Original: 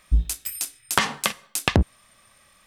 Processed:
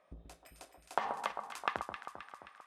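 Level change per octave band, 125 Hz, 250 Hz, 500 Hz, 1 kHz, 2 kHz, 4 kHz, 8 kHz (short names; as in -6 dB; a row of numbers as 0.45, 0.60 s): -33.0, -23.5, -11.5, -7.5, -15.0, -21.5, -28.0 dB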